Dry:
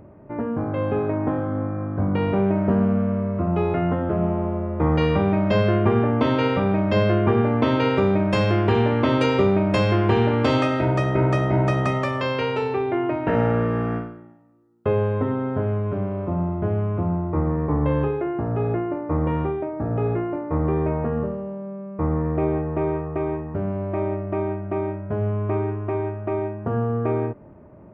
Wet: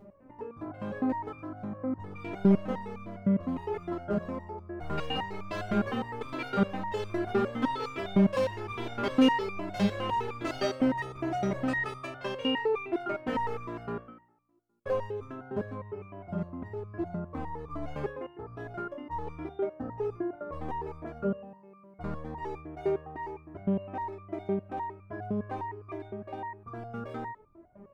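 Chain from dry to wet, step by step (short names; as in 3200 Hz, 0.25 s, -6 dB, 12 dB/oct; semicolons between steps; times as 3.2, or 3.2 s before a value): overloaded stage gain 16.5 dB; stepped resonator 9.8 Hz 200–1200 Hz; gain +8.5 dB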